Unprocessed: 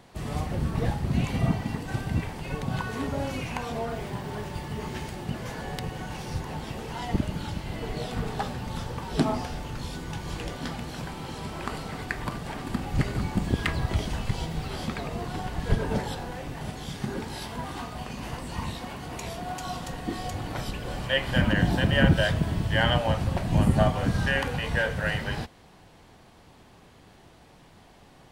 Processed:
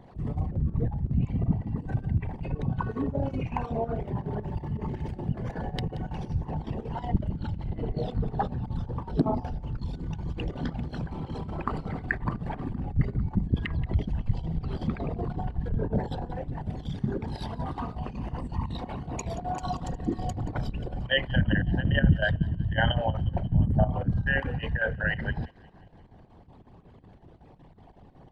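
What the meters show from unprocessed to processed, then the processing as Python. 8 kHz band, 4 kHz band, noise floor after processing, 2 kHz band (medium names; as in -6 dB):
-10.0 dB, -5.5 dB, -52 dBFS, -2.0 dB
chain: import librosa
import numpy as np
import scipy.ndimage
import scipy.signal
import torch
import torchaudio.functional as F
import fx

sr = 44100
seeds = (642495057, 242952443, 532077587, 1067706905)

p1 = fx.envelope_sharpen(x, sr, power=2.0)
p2 = fx.rider(p1, sr, range_db=4, speed_s=0.5)
p3 = p1 + (p2 * 10.0 ** (-2.5 / 20.0))
p4 = fx.echo_wet_highpass(p3, sr, ms=178, feedback_pct=54, hz=2600.0, wet_db=-17.0)
p5 = fx.chopper(p4, sr, hz=5.4, depth_pct=65, duty_pct=75)
y = p5 * 10.0 ** (-3.5 / 20.0)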